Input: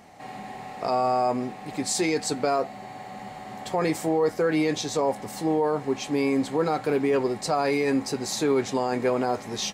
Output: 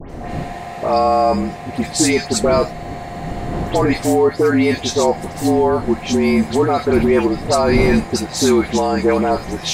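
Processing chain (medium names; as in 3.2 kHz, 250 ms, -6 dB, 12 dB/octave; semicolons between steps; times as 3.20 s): wind noise 310 Hz -37 dBFS; frequency shift -45 Hz; phase dispersion highs, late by 102 ms, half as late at 2.3 kHz; trim +9 dB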